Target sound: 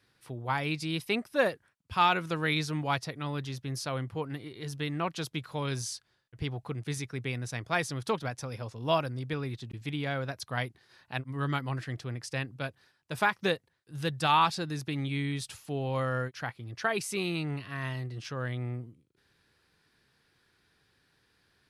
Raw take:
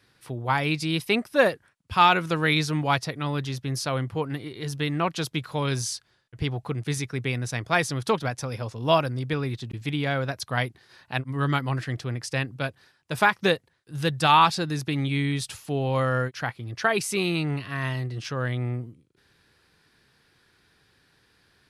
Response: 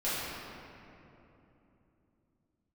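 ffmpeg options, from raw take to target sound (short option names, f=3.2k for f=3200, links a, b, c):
-af "volume=-6.5dB"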